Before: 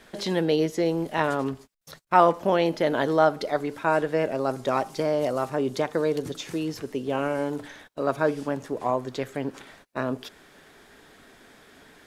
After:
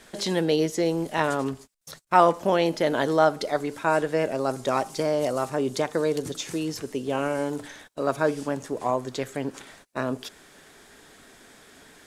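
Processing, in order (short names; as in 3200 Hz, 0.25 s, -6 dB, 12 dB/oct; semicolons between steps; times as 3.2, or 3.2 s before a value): bell 8100 Hz +8 dB 1.3 oct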